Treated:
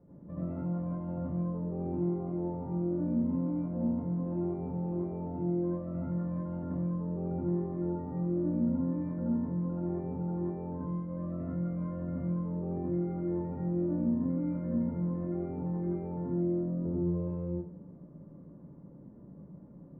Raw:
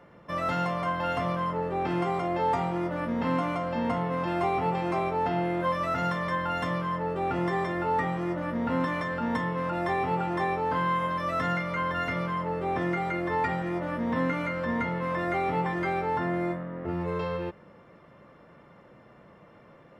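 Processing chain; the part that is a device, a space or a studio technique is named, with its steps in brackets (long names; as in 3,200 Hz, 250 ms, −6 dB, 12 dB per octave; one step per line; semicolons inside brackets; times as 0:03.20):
television next door (downward compressor, threshold −31 dBFS, peak gain reduction 8.5 dB; low-pass filter 270 Hz 12 dB per octave; convolution reverb RT60 0.45 s, pre-delay 73 ms, DRR −6 dB)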